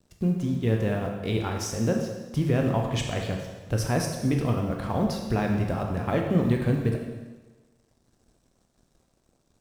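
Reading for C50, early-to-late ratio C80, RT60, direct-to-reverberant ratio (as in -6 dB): 4.0 dB, 6.0 dB, 1.3 s, 1.5 dB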